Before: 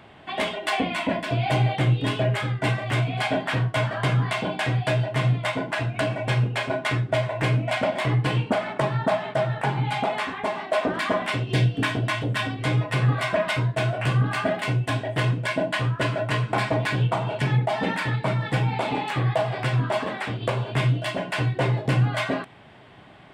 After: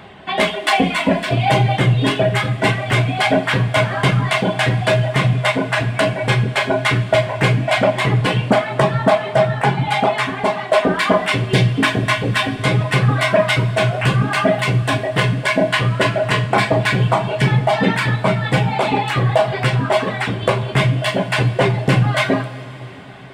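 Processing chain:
reverb reduction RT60 0.9 s
coupled-rooms reverb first 0.31 s, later 4.4 s, from −18 dB, DRR 6 dB
level +9 dB

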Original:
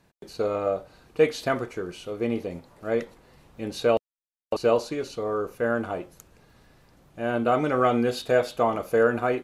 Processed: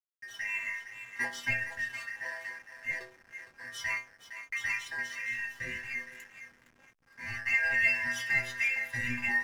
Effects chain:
band-splitting scrambler in four parts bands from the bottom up 2143
in parallel at −8 dB: soft clipping −24 dBFS, distortion −8 dB
on the sum: stiff-string resonator 120 Hz, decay 0.58 s, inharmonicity 0.008
on a send: feedback echo with a high-pass in the loop 462 ms, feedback 33%, high-pass 630 Hz, level −10 dB
on the sum: slack as between gear wheels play −53.5 dBFS
level +6 dB

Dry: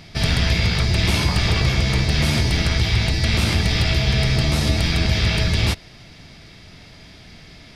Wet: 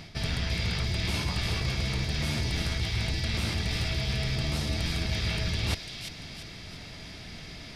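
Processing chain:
reversed playback
downward compressor 10 to 1, threshold −26 dBFS, peak gain reduction 13 dB
reversed playback
delay with a high-pass on its return 342 ms, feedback 42%, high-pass 2,700 Hz, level −4 dB

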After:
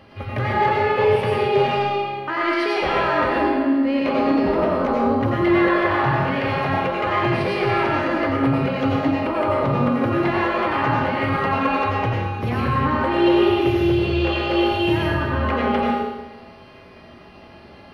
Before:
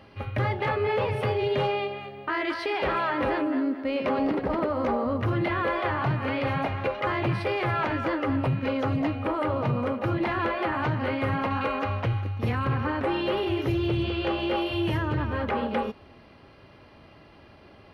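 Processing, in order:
in parallel at −8 dB: soft clipping −23.5 dBFS, distortion −15 dB
on the sum: convolution reverb RT60 1.0 s, pre-delay 85 ms, DRR −3.5 dB

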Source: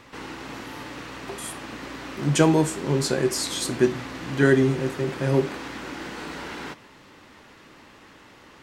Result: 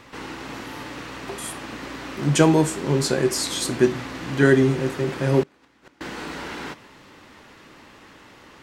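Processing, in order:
0:05.43–0:06.01: gate with flip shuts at −26 dBFS, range −26 dB
level +2 dB

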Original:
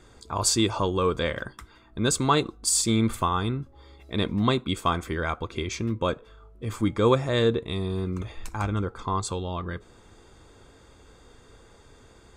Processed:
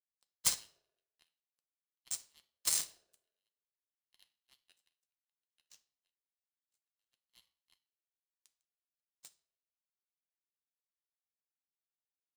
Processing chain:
in parallel at +2 dB: downward compressor 6 to 1, threshold −30 dBFS, peak gain reduction 14.5 dB
on the sum: inverse Chebyshev high-pass filter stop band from 630 Hz, stop band 80 dB
far-end echo of a speakerphone 280 ms, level −11 dB
power curve on the samples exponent 3
on a send at −6 dB: convolution reverb RT60 0.60 s, pre-delay 3 ms
on the sum: ring modulator with a square carrier 530 Hz

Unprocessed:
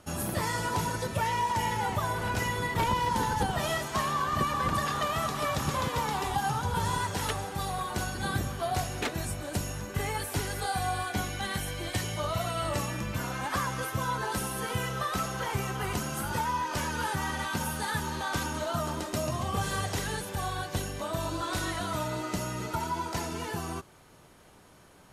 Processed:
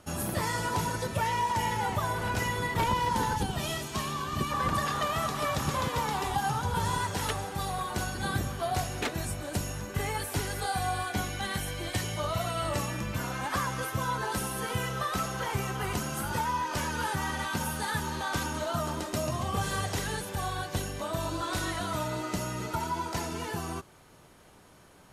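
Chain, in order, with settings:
gain on a spectral selection 0:03.37–0:04.51, 450–2,200 Hz −6 dB

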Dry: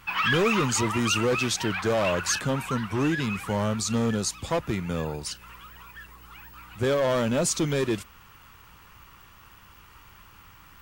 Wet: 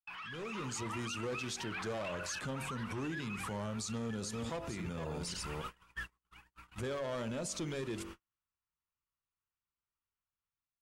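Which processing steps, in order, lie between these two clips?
0:03.94–0:05.98: delay that plays each chunk backwards 280 ms, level −8.5 dB
low-pass filter 12,000 Hz 24 dB per octave
hum removal 47.59 Hz, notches 22
noise gate −43 dBFS, range −52 dB
downward compressor 10 to 1, threshold −36 dBFS, peak gain reduction 16.5 dB
brickwall limiter −37 dBFS, peak gain reduction 11 dB
automatic gain control gain up to 7.5 dB
level −2.5 dB

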